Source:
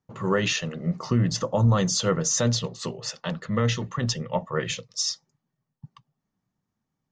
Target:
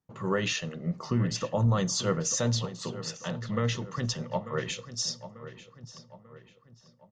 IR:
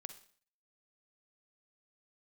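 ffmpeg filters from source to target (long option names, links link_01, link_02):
-filter_complex "[0:a]asplit=2[link_01][link_02];[link_02]adelay=892,lowpass=frequency=3100:poles=1,volume=-13dB,asplit=2[link_03][link_04];[link_04]adelay=892,lowpass=frequency=3100:poles=1,volume=0.46,asplit=2[link_05][link_06];[link_06]adelay=892,lowpass=frequency=3100:poles=1,volume=0.46,asplit=2[link_07][link_08];[link_08]adelay=892,lowpass=frequency=3100:poles=1,volume=0.46,asplit=2[link_09][link_10];[link_10]adelay=892,lowpass=frequency=3100:poles=1,volume=0.46[link_11];[link_01][link_03][link_05][link_07][link_09][link_11]amix=inputs=6:normalize=0,asplit=2[link_12][link_13];[1:a]atrim=start_sample=2205,asetrate=57330,aresample=44100[link_14];[link_13][link_14]afir=irnorm=-1:irlink=0,volume=-3dB[link_15];[link_12][link_15]amix=inputs=2:normalize=0,volume=-7dB"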